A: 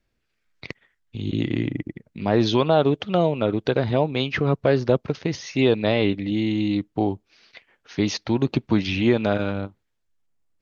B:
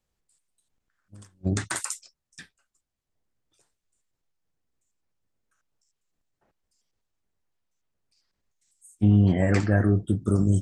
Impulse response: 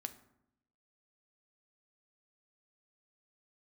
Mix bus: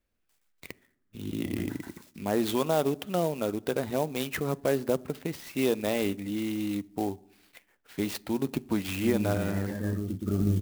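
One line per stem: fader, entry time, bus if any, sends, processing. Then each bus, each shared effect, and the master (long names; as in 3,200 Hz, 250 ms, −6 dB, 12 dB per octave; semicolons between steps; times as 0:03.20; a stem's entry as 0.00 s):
−10.0 dB, 0.00 s, send −5.5 dB, no echo send, no processing
−4.5 dB, 0.00 s, send −14 dB, echo send −6.5 dB, de-essing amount 95%; pitch vibrato 7.1 Hz 17 cents; phaser whose notches keep moving one way rising 0.9 Hz; automatic ducking −13 dB, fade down 0.25 s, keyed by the first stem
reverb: on, RT60 0.80 s, pre-delay 4 ms
echo: single-tap delay 121 ms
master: parametric band 120 Hz −13 dB 0.28 octaves; converter with an unsteady clock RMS 0.038 ms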